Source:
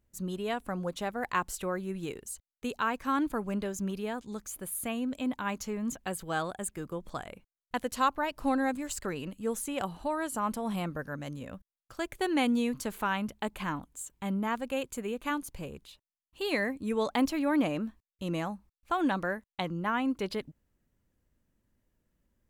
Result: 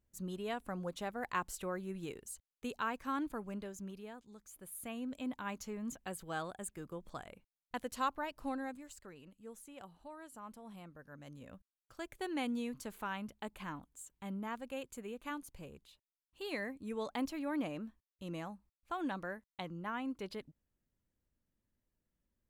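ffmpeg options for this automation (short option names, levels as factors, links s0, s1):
-af "volume=3.55,afade=t=out:st=2.74:d=1.63:silence=0.298538,afade=t=in:st=4.37:d=0.74:silence=0.354813,afade=t=out:st=8.16:d=0.84:silence=0.298538,afade=t=in:st=10.98:d=0.54:silence=0.375837"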